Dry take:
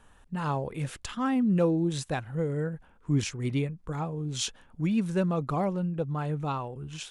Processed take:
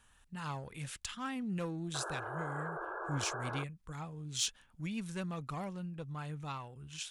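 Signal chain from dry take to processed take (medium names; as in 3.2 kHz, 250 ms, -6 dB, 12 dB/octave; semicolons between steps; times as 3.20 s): single-diode clipper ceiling -18 dBFS; amplifier tone stack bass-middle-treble 5-5-5; painted sound noise, 1.94–3.64 s, 320–1700 Hz -47 dBFS; trim +5.5 dB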